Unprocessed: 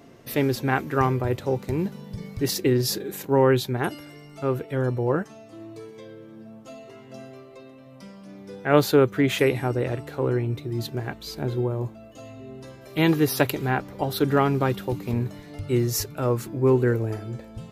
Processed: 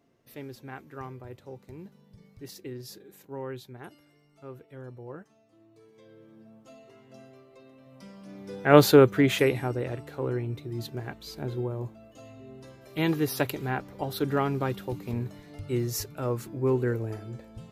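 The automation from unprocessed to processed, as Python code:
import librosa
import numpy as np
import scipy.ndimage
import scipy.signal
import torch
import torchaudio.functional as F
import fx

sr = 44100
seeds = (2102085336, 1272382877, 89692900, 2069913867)

y = fx.gain(x, sr, db=fx.line((5.7, -18.5), (6.2, -9.0), (7.49, -9.0), (8.85, 3.0), (9.84, -6.0)))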